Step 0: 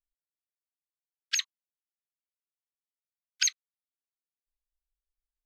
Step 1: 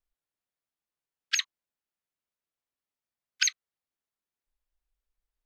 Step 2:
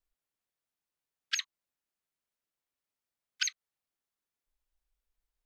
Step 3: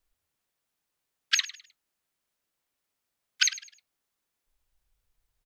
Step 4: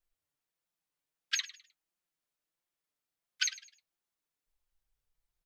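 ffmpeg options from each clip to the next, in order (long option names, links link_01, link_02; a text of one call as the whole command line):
ffmpeg -i in.wav -af "highshelf=frequency=3400:gain=-9.5,volume=6.5dB" out.wav
ffmpeg -i in.wav -af "acompressor=threshold=-29dB:ratio=4" out.wav
ffmpeg -i in.wav -filter_complex "[0:a]asplit=4[link_01][link_02][link_03][link_04];[link_02]adelay=103,afreqshift=64,volume=-16dB[link_05];[link_03]adelay=206,afreqshift=128,volume=-26.5dB[link_06];[link_04]adelay=309,afreqshift=192,volume=-36.9dB[link_07];[link_01][link_05][link_06][link_07]amix=inputs=4:normalize=0,volume=8dB" out.wav
ffmpeg -i in.wav -af "flanger=delay=5.5:depth=1.5:regen=47:speed=1.5:shape=triangular,volume=-4dB" out.wav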